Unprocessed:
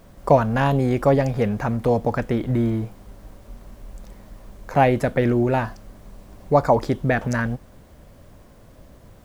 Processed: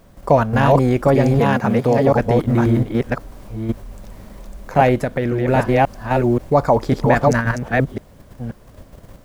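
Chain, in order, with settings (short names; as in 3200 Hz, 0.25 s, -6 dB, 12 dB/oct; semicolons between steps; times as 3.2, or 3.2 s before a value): reverse delay 0.532 s, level -1 dB; in parallel at +2 dB: level quantiser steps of 22 dB; 1.39–2.07 on the sum: HPF 130 Hz; 4.95–5.48 compressor 2:1, threshold -19 dBFS, peak gain reduction 6 dB; gain -1.5 dB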